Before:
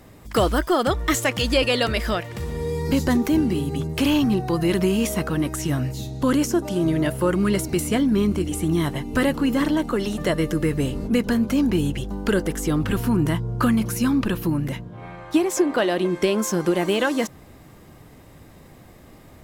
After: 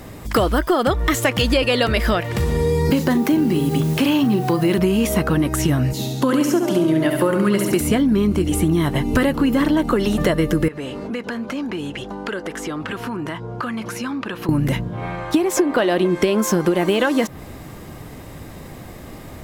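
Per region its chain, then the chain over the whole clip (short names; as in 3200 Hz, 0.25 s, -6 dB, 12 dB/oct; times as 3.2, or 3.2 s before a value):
2.9–4.78 HPF 120 Hz 24 dB/oct + requantised 8-bit, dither triangular + doubler 39 ms -12.5 dB
5.93–7.81 HPF 200 Hz + flutter echo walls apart 11.8 m, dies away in 0.7 s
10.68–14.49 band-pass 1300 Hz, Q 0.51 + compressor 3:1, threshold -36 dBFS
whole clip: dynamic EQ 7000 Hz, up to -5 dB, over -44 dBFS, Q 0.78; compressor 5:1, threshold -25 dBFS; maximiser +15 dB; gain -4.5 dB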